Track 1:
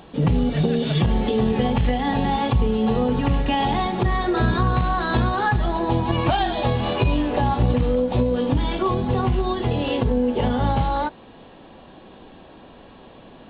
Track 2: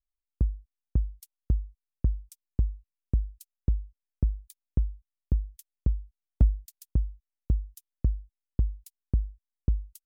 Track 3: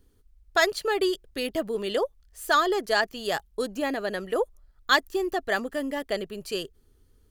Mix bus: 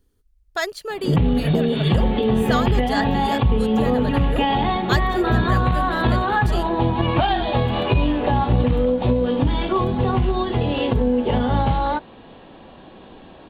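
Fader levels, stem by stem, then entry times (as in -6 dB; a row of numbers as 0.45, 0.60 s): +1.5, -14.5, -3.0 dB; 0.90, 1.00, 0.00 s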